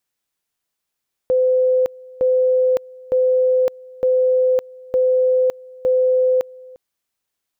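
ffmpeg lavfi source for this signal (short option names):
-f lavfi -i "aevalsrc='pow(10,(-12.5-24*gte(mod(t,0.91),0.56))/20)*sin(2*PI*511*t)':d=5.46:s=44100"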